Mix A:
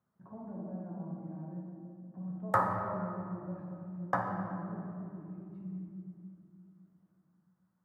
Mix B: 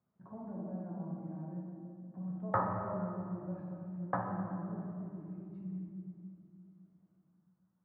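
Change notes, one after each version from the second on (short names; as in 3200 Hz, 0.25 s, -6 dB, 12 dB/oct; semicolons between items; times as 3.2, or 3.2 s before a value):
background: add tape spacing loss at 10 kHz 40 dB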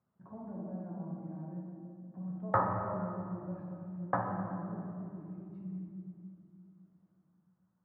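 background +3.0 dB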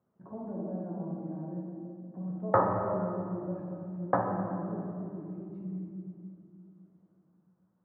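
master: add bell 410 Hz +10 dB 1.7 oct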